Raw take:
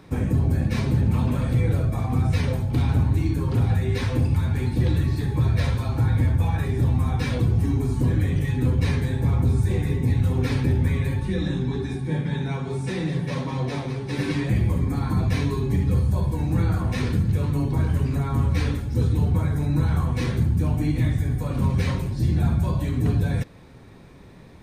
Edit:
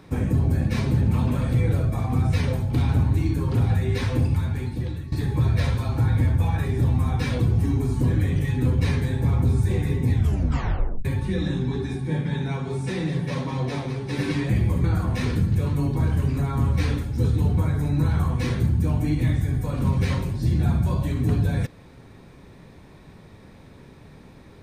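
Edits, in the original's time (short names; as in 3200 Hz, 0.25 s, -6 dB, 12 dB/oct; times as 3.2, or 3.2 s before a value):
4.24–5.12 fade out, to -15.5 dB
10.13 tape stop 0.92 s
14.84–16.61 cut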